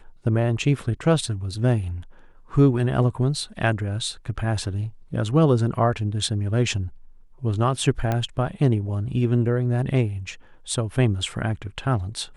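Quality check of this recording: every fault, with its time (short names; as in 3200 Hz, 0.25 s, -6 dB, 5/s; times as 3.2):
8.12 pop -12 dBFS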